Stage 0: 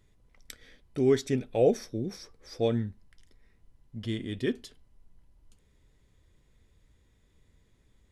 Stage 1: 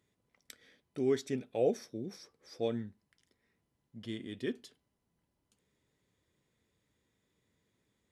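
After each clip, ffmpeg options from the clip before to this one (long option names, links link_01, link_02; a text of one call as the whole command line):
ffmpeg -i in.wav -af "highpass=150,volume=-6.5dB" out.wav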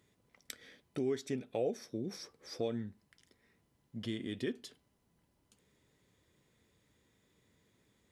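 ffmpeg -i in.wav -af "acompressor=threshold=-42dB:ratio=2.5,volume=6dB" out.wav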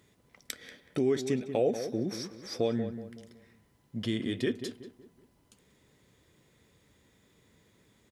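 ffmpeg -i in.wav -filter_complex "[0:a]asplit=2[link_01][link_02];[link_02]adelay=187,lowpass=frequency=1600:poles=1,volume=-9.5dB,asplit=2[link_03][link_04];[link_04]adelay=187,lowpass=frequency=1600:poles=1,volume=0.4,asplit=2[link_05][link_06];[link_06]adelay=187,lowpass=frequency=1600:poles=1,volume=0.4,asplit=2[link_07][link_08];[link_08]adelay=187,lowpass=frequency=1600:poles=1,volume=0.4[link_09];[link_01][link_03][link_05][link_07][link_09]amix=inputs=5:normalize=0,volume=7dB" out.wav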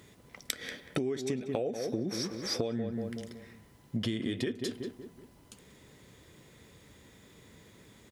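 ffmpeg -i in.wav -af "acompressor=threshold=-37dB:ratio=20,volume=8.5dB" out.wav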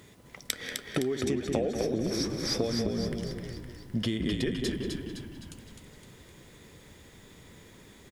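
ffmpeg -i in.wav -filter_complex "[0:a]asplit=8[link_01][link_02][link_03][link_04][link_05][link_06][link_07][link_08];[link_02]adelay=257,afreqshift=-52,volume=-5dB[link_09];[link_03]adelay=514,afreqshift=-104,volume=-10.7dB[link_10];[link_04]adelay=771,afreqshift=-156,volume=-16.4dB[link_11];[link_05]adelay=1028,afreqshift=-208,volume=-22dB[link_12];[link_06]adelay=1285,afreqshift=-260,volume=-27.7dB[link_13];[link_07]adelay=1542,afreqshift=-312,volume=-33.4dB[link_14];[link_08]adelay=1799,afreqshift=-364,volume=-39.1dB[link_15];[link_01][link_09][link_10][link_11][link_12][link_13][link_14][link_15]amix=inputs=8:normalize=0,volume=2.5dB" out.wav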